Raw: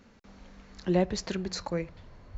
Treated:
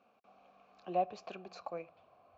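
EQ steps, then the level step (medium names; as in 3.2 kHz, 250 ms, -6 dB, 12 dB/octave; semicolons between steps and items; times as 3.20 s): vowel filter a; high-pass 82 Hz 12 dB/octave; bass shelf 160 Hz +3.5 dB; +4.0 dB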